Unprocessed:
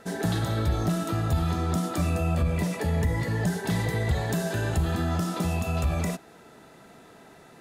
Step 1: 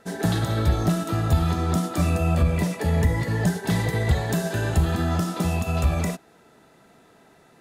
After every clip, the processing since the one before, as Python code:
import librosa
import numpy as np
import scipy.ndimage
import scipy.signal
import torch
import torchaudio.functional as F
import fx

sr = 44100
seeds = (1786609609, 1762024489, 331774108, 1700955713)

y = fx.upward_expand(x, sr, threshold_db=-40.0, expansion=1.5)
y = y * librosa.db_to_amplitude(6.0)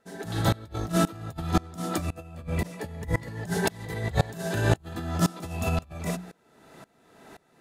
y = fx.hum_notches(x, sr, base_hz=60, count=3)
y = fx.over_compress(y, sr, threshold_db=-26.0, ratio=-0.5)
y = fx.tremolo_decay(y, sr, direction='swelling', hz=1.9, depth_db=24)
y = y * librosa.db_to_amplitude(5.5)